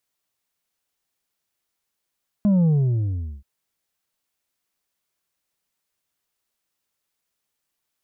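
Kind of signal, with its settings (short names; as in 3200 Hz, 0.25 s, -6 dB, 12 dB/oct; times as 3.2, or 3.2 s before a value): sub drop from 210 Hz, over 0.98 s, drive 4.5 dB, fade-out 0.78 s, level -15 dB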